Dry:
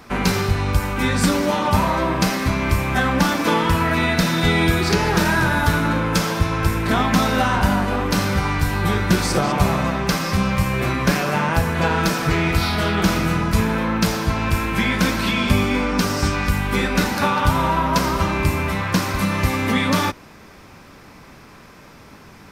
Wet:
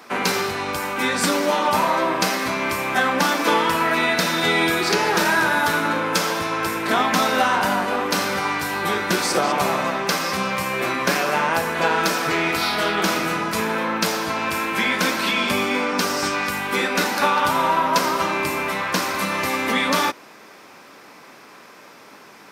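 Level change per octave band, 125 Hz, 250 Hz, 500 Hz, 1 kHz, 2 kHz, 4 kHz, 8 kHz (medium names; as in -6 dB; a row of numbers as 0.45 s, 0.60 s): -14.0 dB, -5.5 dB, +0.5 dB, +1.5 dB, +1.5 dB, +1.5 dB, +1.5 dB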